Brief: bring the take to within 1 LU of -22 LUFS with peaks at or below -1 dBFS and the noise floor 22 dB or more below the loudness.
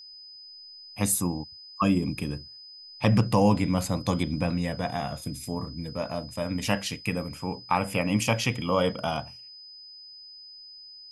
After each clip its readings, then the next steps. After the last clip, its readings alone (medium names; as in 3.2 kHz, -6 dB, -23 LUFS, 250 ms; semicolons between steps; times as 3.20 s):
steady tone 5 kHz; tone level -44 dBFS; loudness -27.5 LUFS; peak level -8.0 dBFS; loudness target -22.0 LUFS
-> band-stop 5 kHz, Q 30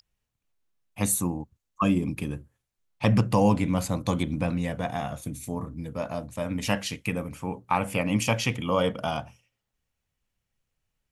steady tone not found; loudness -27.5 LUFS; peak level -8.0 dBFS; loudness target -22.0 LUFS
-> trim +5.5 dB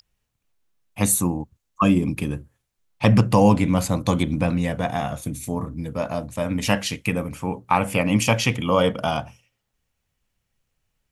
loudness -22.0 LUFS; peak level -2.5 dBFS; noise floor -77 dBFS